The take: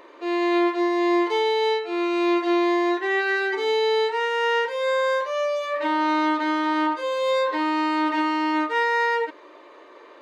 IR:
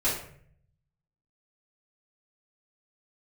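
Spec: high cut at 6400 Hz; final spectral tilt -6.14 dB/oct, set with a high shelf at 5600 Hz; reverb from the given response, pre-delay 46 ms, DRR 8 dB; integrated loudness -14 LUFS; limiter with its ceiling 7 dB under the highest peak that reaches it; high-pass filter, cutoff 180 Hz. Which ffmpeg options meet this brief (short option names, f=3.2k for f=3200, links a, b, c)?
-filter_complex "[0:a]highpass=180,lowpass=6.4k,highshelf=f=5.6k:g=4,alimiter=limit=-19dB:level=0:latency=1,asplit=2[a][b];[1:a]atrim=start_sample=2205,adelay=46[c];[b][c]afir=irnorm=-1:irlink=0,volume=-18.5dB[d];[a][d]amix=inputs=2:normalize=0,volume=10dB"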